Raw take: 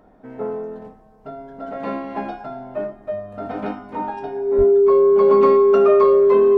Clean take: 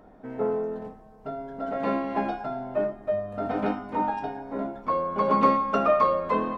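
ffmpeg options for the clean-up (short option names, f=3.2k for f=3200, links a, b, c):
-filter_complex "[0:a]bandreject=f=400:w=30,asplit=3[a][b][c];[a]afade=t=out:st=4.57:d=0.02[d];[b]highpass=f=140:w=0.5412,highpass=f=140:w=1.3066,afade=t=in:st=4.57:d=0.02,afade=t=out:st=4.69:d=0.02[e];[c]afade=t=in:st=4.69:d=0.02[f];[d][e][f]amix=inputs=3:normalize=0"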